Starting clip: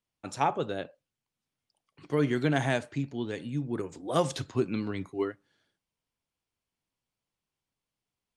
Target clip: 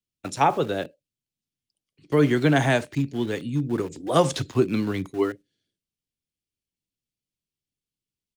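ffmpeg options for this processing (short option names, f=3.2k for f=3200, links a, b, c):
-filter_complex "[0:a]agate=range=-9dB:threshold=-46dB:ratio=16:detection=peak,acrossover=split=260|460|2200[a][b][c][d];[b]asplit=2[e][f];[f]adelay=47,volume=-11.5dB[g];[e][g]amix=inputs=2:normalize=0[h];[c]aeval=exprs='val(0)*gte(abs(val(0)),0.00355)':c=same[i];[a][h][i][d]amix=inputs=4:normalize=0,volume=7dB"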